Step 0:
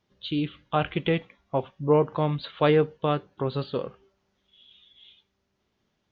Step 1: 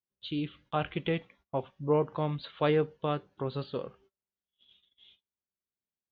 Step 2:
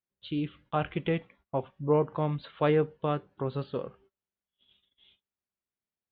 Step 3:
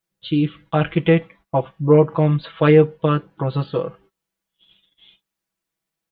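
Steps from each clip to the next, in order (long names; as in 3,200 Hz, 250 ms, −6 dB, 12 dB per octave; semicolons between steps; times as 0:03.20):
noise gate −55 dBFS, range −23 dB; level −6 dB
bass and treble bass +1 dB, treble −14 dB; level +1.5 dB
comb filter 6.1 ms, depth 93%; level +8.5 dB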